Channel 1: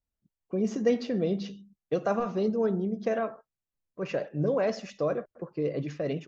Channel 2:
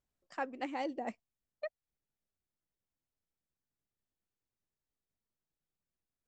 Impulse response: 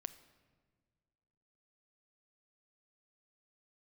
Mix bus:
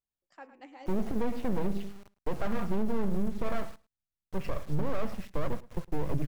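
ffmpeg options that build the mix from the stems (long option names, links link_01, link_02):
-filter_complex "[0:a]lowpass=2100,aeval=exprs='max(val(0),0)':channel_layout=same,acrusher=bits=8:mix=0:aa=0.000001,adelay=350,volume=3dB,asplit=2[link_01][link_02];[link_02]volume=-22.5dB[link_03];[1:a]bandreject=frequency=84.23:width_type=h:width=4,bandreject=frequency=168.46:width_type=h:width=4,bandreject=frequency=252.69:width_type=h:width=4,bandreject=frequency=336.92:width_type=h:width=4,bandreject=frequency=421.15:width_type=h:width=4,bandreject=frequency=505.38:width_type=h:width=4,bandreject=frequency=589.61:width_type=h:width=4,bandreject=frequency=673.84:width_type=h:width=4,bandreject=frequency=758.07:width_type=h:width=4,bandreject=frequency=842.3:width_type=h:width=4,bandreject=frequency=926.53:width_type=h:width=4,bandreject=frequency=1010.76:width_type=h:width=4,bandreject=frequency=1094.99:width_type=h:width=4,bandreject=frequency=1179.22:width_type=h:width=4,bandreject=frequency=1263.45:width_type=h:width=4,bandreject=frequency=1347.68:width_type=h:width=4,bandreject=frequency=1431.91:width_type=h:width=4,bandreject=frequency=1516.14:width_type=h:width=4,bandreject=frequency=1600.37:width_type=h:width=4,bandreject=frequency=1684.6:width_type=h:width=4,bandreject=frequency=1768.83:width_type=h:width=4,bandreject=frequency=1853.06:width_type=h:width=4,bandreject=frequency=1937.29:width_type=h:width=4,bandreject=frequency=2021.52:width_type=h:width=4,bandreject=frequency=2105.75:width_type=h:width=4,bandreject=frequency=2189.98:width_type=h:width=4,bandreject=frequency=2274.21:width_type=h:width=4,bandreject=frequency=2358.44:width_type=h:width=4,bandreject=frequency=2442.67:width_type=h:width=4,bandreject=frequency=2526.9:width_type=h:width=4,bandreject=frequency=2611.13:width_type=h:width=4,bandreject=frequency=2695.36:width_type=h:width=4,bandreject=frequency=2779.59:width_type=h:width=4,bandreject=frequency=2863.82:width_type=h:width=4,bandreject=frequency=2948.05:width_type=h:width=4,bandreject=frequency=3032.28:width_type=h:width=4,volume=-10.5dB,asplit=2[link_04][link_05];[link_05]volume=-12.5dB[link_06];[link_03][link_06]amix=inputs=2:normalize=0,aecho=0:1:108:1[link_07];[link_01][link_04][link_07]amix=inputs=3:normalize=0,asubboost=boost=3:cutoff=230,alimiter=limit=-18.5dB:level=0:latency=1:release=54"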